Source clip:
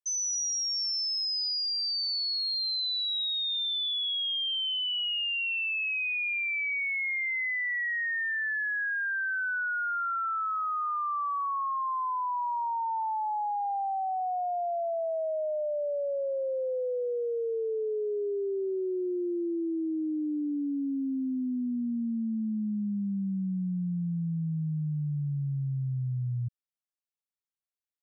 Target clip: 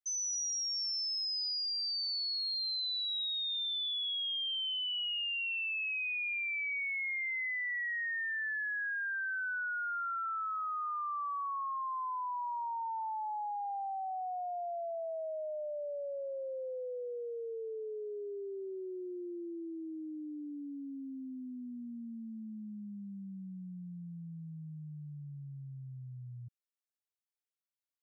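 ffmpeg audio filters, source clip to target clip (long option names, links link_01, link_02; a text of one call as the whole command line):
ffmpeg -i in.wav -af "lowshelf=frequency=380:gain=-11,volume=-5dB" out.wav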